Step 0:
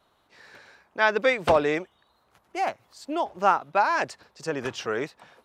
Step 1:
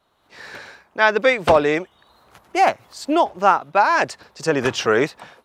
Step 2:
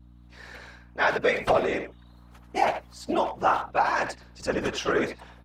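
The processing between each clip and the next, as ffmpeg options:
ffmpeg -i in.wav -af "dynaudnorm=framelen=210:gausssize=3:maxgain=14.5dB,volume=-1dB" out.wav
ffmpeg -i in.wav -filter_complex "[0:a]afftfilt=real='hypot(re,im)*cos(2*PI*random(0))':imag='hypot(re,im)*sin(2*PI*random(1))':win_size=512:overlap=0.75,aeval=exprs='val(0)+0.00398*(sin(2*PI*60*n/s)+sin(2*PI*2*60*n/s)/2+sin(2*PI*3*60*n/s)/3+sin(2*PI*4*60*n/s)/4+sin(2*PI*5*60*n/s)/5)':channel_layout=same,asplit=2[link_01][link_02];[link_02]adelay=80,highpass=300,lowpass=3400,asoftclip=type=hard:threshold=-17.5dB,volume=-8dB[link_03];[link_01][link_03]amix=inputs=2:normalize=0,volume=-2dB" out.wav

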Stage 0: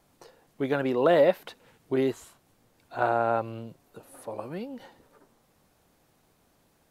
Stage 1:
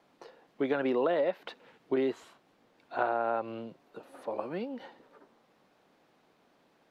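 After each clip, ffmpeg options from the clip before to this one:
ffmpeg -i in.wav -filter_complex "[0:a]acrossover=split=180 4700:gain=0.1 1 0.126[link_01][link_02][link_03];[link_01][link_02][link_03]amix=inputs=3:normalize=0,acompressor=threshold=-26dB:ratio=12,volume=1.5dB" out.wav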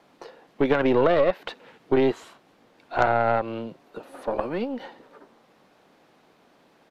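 ffmpeg -i in.wav -af "aeval=exprs='0.224*(cos(1*acos(clip(val(0)/0.224,-1,1)))-cos(1*PI/2))+0.02*(cos(6*acos(clip(val(0)/0.224,-1,1)))-cos(6*PI/2))':channel_layout=same,aresample=32000,aresample=44100,volume=8dB" out.wav

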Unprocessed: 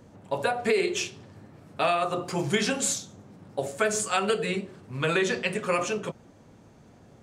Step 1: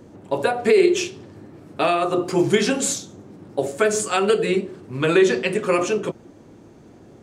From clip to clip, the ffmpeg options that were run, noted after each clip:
ffmpeg -i in.wav -af "equalizer=frequency=340:width=2:gain=10,volume=3.5dB" out.wav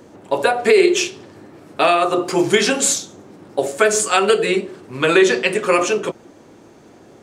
ffmpeg -i in.wav -af "lowshelf=frequency=280:gain=-12,volume=6.5dB" out.wav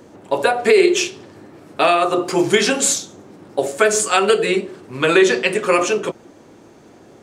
ffmpeg -i in.wav -af anull out.wav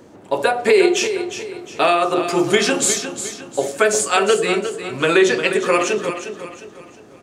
ffmpeg -i in.wav -af "aecho=1:1:357|714|1071|1428:0.316|0.123|0.0481|0.0188,volume=-1dB" out.wav

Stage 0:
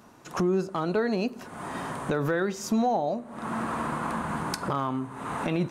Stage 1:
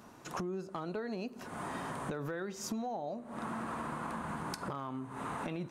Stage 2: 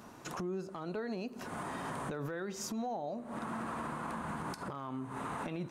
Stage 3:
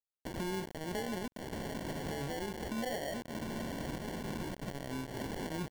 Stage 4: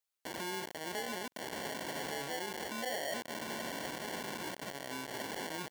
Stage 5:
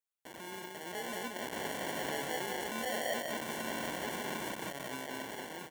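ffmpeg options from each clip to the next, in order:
ffmpeg -i in.wav -af "acompressor=threshold=-35dB:ratio=5,volume=-1.5dB" out.wav
ffmpeg -i in.wav -af "alimiter=level_in=9dB:limit=-24dB:level=0:latency=1:release=102,volume=-9dB,volume=2.5dB" out.wav
ffmpeg -i in.wav -af "acrusher=bits=6:mix=0:aa=0.000001,adynamicequalizer=threshold=0.00178:dfrequency=1100:dqfactor=3.3:tfrequency=1100:tqfactor=3.3:attack=5:release=100:ratio=0.375:range=2:mode=cutabove:tftype=bell,acrusher=samples=35:mix=1:aa=0.000001" out.wav
ffmpeg -i in.wav -af "alimiter=level_in=9dB:limit=-24dB:level=0:latency=1,volume=-9dB,highpass=frequency=900:poles=1,asoftclip=type=tanh:threshold=-29dB,volume=7.5dB" out.wav
ffmpeg -i in.wav -af "equalizer=frequency=4700:width=3.6:gain=-7.5,dynaudnorm=framelen=210:gausssize=9:maxgain=8dB,aecho=1:1:181:0.668,volume=-7dB" out.wav

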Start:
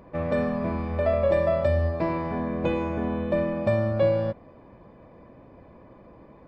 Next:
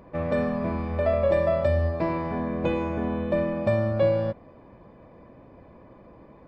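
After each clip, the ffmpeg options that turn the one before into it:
ffmpeg -i in.wav -af anull out.wav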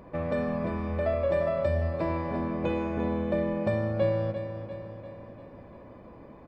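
ffmpeg -i in.wav -filter_complex "[0:a]asplit=2[link_01][link_02];[link_02]acompressor=threshold=-33dB:ratio=6,volume=3dB[link_03];[link_01][link_03]amix=inputs=2:normalize=0,aecho=1:1:346|692|1038|1384|1730|2076:0.316|0.177|0.0992|0.0555|0.0311|0.0174,volume=-7dB" out.wav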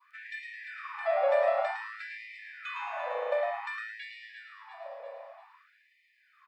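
ffmpeg -i in.wav -filter_complex "[0:a]asplit=5[link_01][link_02][link_03][link_04][link_05];[link_02]adelay=108,afreqshift=110,volume=-6dB[link_06];[link_03]adelay=216,afreqshift=220,volume=-15.9dB[link_07];[link_04]adelay=324,afreqshift=330,volume=-25.8dB[link_08];[link_05]adelay=432,afreqshift=440,volume=-35.7dB[link_09];[link_01][link_06][link_07][link_08][link_09]amix=inputs=5:normalize=0,adynamicequalizer=threshold=0.00708:dfrequency=1800:dqfactor=0.97:tfrequency=1800:tqfactor=0.97:attack=5:release=100:ratio=0.375:range=2:mode=boostabove:tftype=bell,afftfilt=real='re*gte(b*sr/1024,460*pow(1800/460,0.5+0.5*sin(2*PI*0.54*pts/sr)))':imag='im*gte(b*sr/1024,460*pow(1800/460,0.5+0.5*sin(2*PI*0.54*pts/sr)))':win_size=1024:overlap=0.75" out.wav

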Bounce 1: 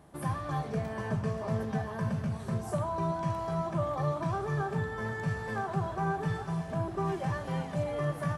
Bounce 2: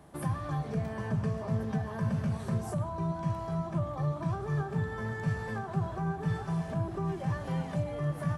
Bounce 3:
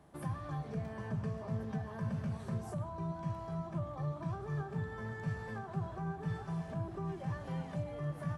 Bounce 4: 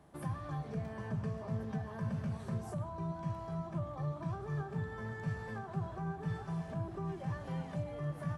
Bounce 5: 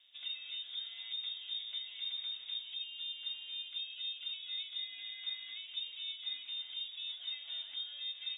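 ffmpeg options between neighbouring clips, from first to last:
ffmpeg -i in.wav -filter_complex "[0:a]acrossover=split=260[link_01][link_02];[link_02]acompressor=threshold=-39dB:ratio=6[link_03];[link_01][link_03]amix=inputs=2:normalize=0,volume=2dB" out.wav
ffmpeg -i in.wav -af "highshelf=frequency=9300:gain=-5.5,volume=-6.5dB" out.wav
ffmpeg -i in.wav -af anull out.wav
ffmpeg -i in.wav -af "lowpass=frequency=3200:width_type=q:width=0.5098,lowpass=frequency=3200:width_type=q:width=0.6013,lowpass=frequency=3200:width_type=q:width=0.9,lowpass=frequency=3200:width_type=q:width=2.563,afreqshift=-3800,volume=-4dB" out.wav

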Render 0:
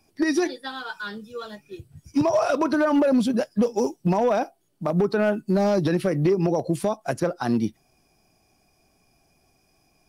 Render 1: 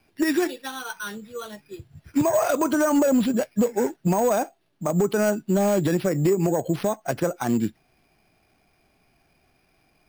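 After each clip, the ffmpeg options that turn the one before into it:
ffmpeg -i in.wav -af "acrusher=samples=6:mix=1:aa=0.000001" out.wav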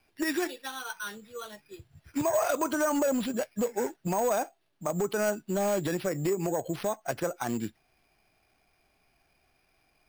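ffmpeg -i in.wav -af "equalizer=frequency=190:width=0.55:gain=-7,volume=-3.5dB" out.wav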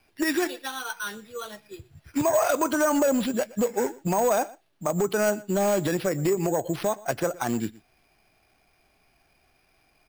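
ffmpeg -i in.wav -af "aecho=1:1:119:0.0841,volume=4.5dB" out.wav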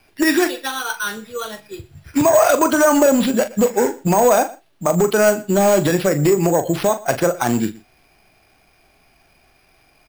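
ffmpeg -i in.wav -filter_complex "[0:a]asplit=2[link_01][link_02];[link_02]adelay=41,volume=-10.5dB[link_03];[link_01][link_03]amix=inputs=2:normalize=0,volume=8.5dB" out.wav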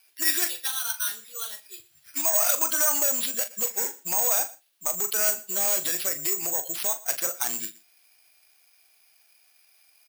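ffmpeg -i in.wav -af "aderivative,volume=1.5dB" out.wav

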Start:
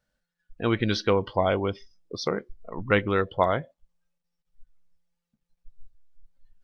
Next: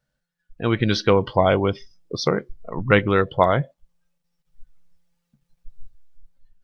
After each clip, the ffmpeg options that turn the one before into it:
ffmpeg -i in.wav -af "equalizer=frequency=140:width_type=o:width=0.34:gain=9,dynaudnorm=framelen=320:gausssize=5:maxgain=8.5dB" out.wav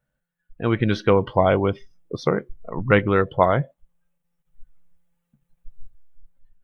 ffmpeg -i in.wav -af "equalizer=frequency=4900:width_type=o:width=0.92:gain=-13.5" out.wav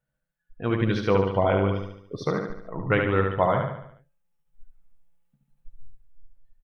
ffmpeg -i in.wav -filter_complex "[0:a]flanger=delay=6.1:depth=4.4:regen=-55:speed=0.39:shape=sinusoidal,asplit=2[link_01][link_02];[link_02]aecho=0:1:72|144|216|288|360|432:0.631|0.315|0.158|0.0789|0.0394|0.0197[link_03];[link_01][link_03]amix=inputs=2:normalize=0,volume=-1.5dB" out.wav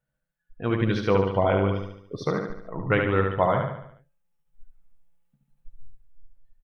ffmpeg -i in.wav -af anull out.wav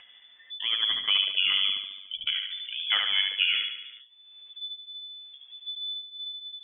ffmpeg -i in.wav -af "lowpass=frequency=3000:width_type=q:width=0.5098,lowpass=frequency=3000:width_type=q:width=0.6013,lowpass=frequency=3000:width_type=q:width=0.9,lowpass=frequency=3000:width_type=q:width=2.563,afreqshift=-3500,acompressor=mode=upward:threshold=-26dB:ratio=2.5,volume=-3.5dB" out.wav

